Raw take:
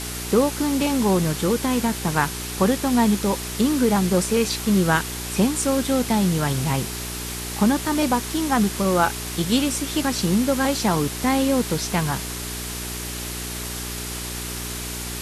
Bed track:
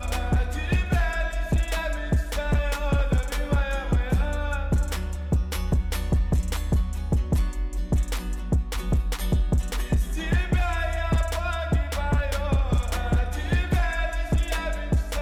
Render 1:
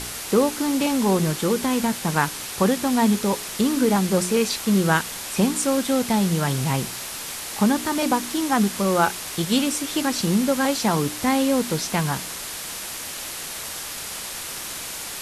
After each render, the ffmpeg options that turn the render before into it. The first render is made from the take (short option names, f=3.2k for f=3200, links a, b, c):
-af "bandreject=f=60:t=h:w=4,bandreject=f=120:t=h:w=4,bandreject=f=180:t=h:w=4,bandreject=f=240:t=h:w=4,bandreject=f=300:t=h:w=4,bandreject=f=360:t=h:w=4,bandreject=f=420:t=h:w=4"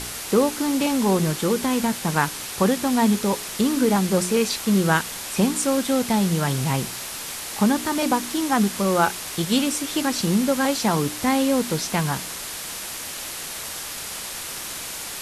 -af anull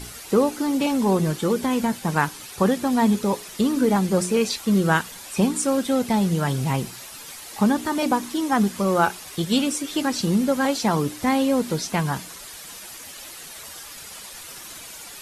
-af "afftdn=nr=10:nf=-33"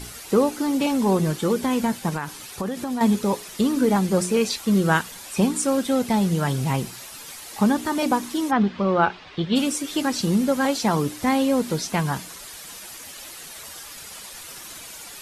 -filter_complex "[0:a]asettb=1/sr,asplit=3[a][b][c];[a]atrim=end=2.094[d];[b]atrim=start=2.09:end=3.01,asetpts=PTS-STARTPTS,afade=t=in:d=0.004:c=qsin,afade=t=out:st=0.916:d=0.004:c=qsin,acompressor=threshold=-23dB:ratio=10:attack=3.2:release=140:knee=1:detection=peak[e];[c]atrim=start=3.006[f];[d][e]acrossfade=d=0.004:c1=hsin:c2=qsin[g];[g][f]acrossfade=d=0.004:c1=qsin:c2=hsin,asplit=3[h][i][j];[h]afade=t=out:st=8.5:d=0.02[k];[i]lowpass=f=3.8k:w=0.5412,lowpass=f=3.8k:w=1.3066,afade=t=in:st=8.5:d=0.02,afade=t=out:st=9.55:d=0.02[l];[j]afade=t=in:st=9.55:d=0.02[m];[k][l][m]amix=inputs=3:normalize=0"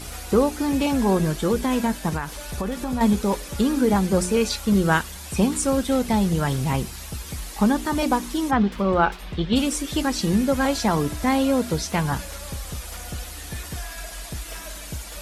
-filter_complex "[1:a]volume=-11dB[a];[0:a][a]amix=inputs=2:normalize=0"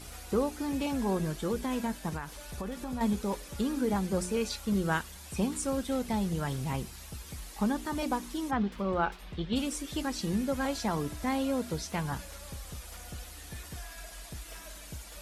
-af "volume=-10dB"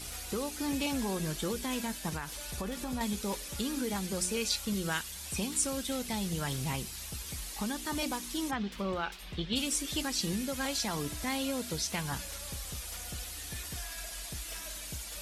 -filter_complex "[0:a]acrossover=split=2200[a][b];[a]alimiter=level_in=2.5dB:limit=-24dB:level=0:latency=1:release=304,volume=-2.5dB[c];[b]acontrast=74[d];[c][d]amix=inputs=2:normalize=0"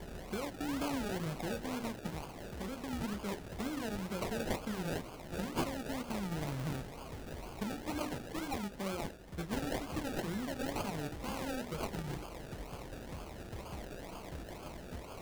-af "acrusher=samples=33:mix=1:aa=0.000001:lfo=1:lforange=19.8:lforate=2.1,flanger=delay=4.6:depth=7.5:regen=-66:speed=0.17:shape=triangular"